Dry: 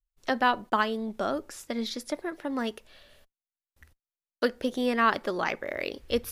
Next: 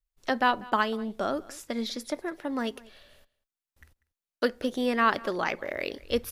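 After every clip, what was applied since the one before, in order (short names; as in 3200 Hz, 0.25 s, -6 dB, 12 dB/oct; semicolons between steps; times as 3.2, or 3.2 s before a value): echo 0.193 s -22 dB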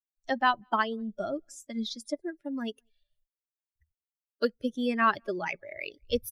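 per-bin expansion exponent 2; vibrato 0.38 Hz 35 cents; gain +1.5 dB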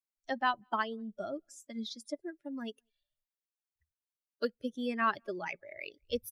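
low shelf 62 Hz -11 dB; gain -5.5 dB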